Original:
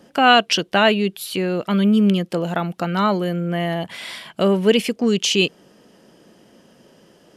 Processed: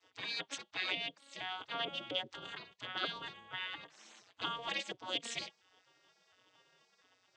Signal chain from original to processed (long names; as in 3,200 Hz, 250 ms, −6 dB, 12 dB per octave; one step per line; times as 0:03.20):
vocoder with an arpeggio as carrier major triad, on F#3, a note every 234 ms
parametric band 3,300 Hz +12.5 dB 0.33 octaves
gate on every frequency bin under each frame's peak −25 dB weak